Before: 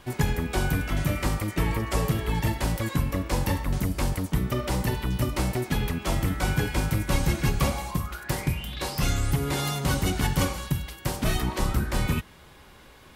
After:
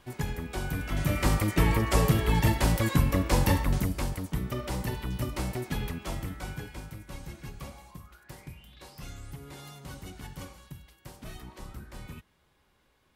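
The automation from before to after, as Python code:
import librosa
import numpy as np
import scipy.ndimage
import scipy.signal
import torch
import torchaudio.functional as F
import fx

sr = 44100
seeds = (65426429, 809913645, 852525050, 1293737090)

y = fx.gain(x, sr, db=fx.line((0.66, -8.0), (1.32, 2.0), (3.62, 2.0), (4.1, -6.0), (5.86, -6.0), (7.0, -18.0)))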